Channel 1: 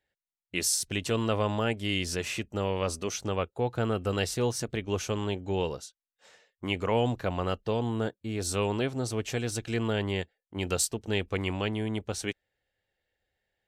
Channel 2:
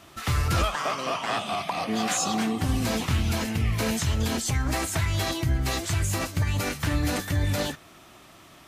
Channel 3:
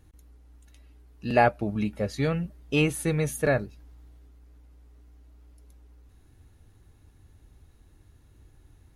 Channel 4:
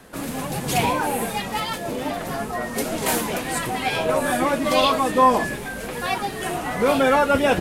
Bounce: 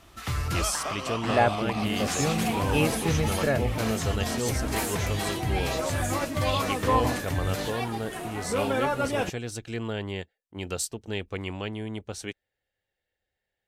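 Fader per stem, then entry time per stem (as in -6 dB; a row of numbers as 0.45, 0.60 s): -3.0, -4.5, -2.0, -9.5 dB; 0.00, 0.00, 0.00, 1.70 s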